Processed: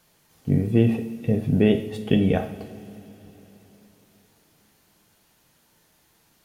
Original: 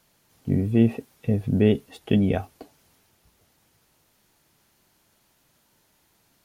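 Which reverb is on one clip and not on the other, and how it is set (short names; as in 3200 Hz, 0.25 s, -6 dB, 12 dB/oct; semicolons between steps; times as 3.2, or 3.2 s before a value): two-slope reverb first 0.52 s, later 4.1 s, from -18 dB, DRR 5 dB; gain +1.5 dB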